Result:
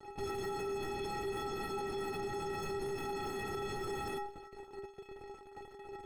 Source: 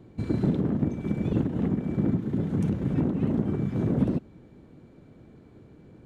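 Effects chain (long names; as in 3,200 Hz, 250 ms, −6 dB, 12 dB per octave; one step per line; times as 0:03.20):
fuzz pedal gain 44 dB, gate −47 dBFS
stiff-string resonator 390 Hz, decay 0.42 s, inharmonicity 0.03
brickwall limiter −34 dBFS, peak gain reduction 10 dB
level +3 dB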